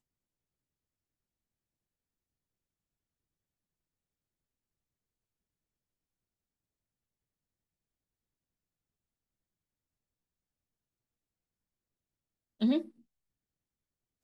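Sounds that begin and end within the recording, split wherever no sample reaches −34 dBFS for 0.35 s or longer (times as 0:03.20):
0:12.62–0:12.81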